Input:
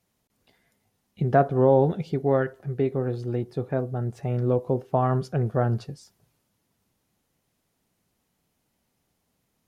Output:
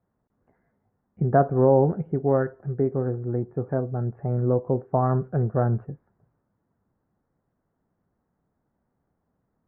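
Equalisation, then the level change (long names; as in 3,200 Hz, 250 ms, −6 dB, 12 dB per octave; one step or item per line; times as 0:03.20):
Butterworth low-pass 1,700 Hz 36 dB per octave
high-frequency loss of the air 390 metres
+1.5 dB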